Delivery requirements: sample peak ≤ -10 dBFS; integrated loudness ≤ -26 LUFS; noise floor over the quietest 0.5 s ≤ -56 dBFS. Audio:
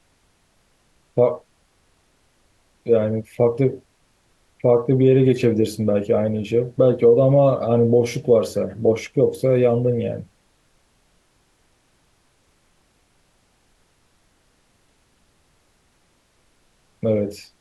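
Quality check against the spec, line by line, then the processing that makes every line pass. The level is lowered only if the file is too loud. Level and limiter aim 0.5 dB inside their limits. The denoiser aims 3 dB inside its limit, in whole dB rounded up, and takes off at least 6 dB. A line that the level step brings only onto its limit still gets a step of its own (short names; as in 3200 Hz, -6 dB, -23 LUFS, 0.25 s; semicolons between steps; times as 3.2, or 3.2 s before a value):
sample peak -5.5 dBFS: fail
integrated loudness -19.0 LUFS: fail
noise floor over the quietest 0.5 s -62 dBFS: OK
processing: gain -7.5 dB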